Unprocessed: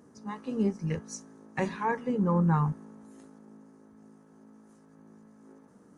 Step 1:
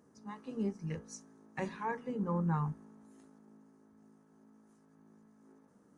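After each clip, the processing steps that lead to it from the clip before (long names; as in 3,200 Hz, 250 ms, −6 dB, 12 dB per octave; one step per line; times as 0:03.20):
mains-hum notches 60/120/180/240/300/360/420/480/540 Hz
level −7.5 dB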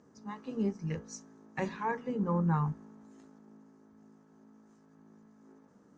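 Butterworth low-pass 7,400 Hz 36 dB per octave
level +3.5 dB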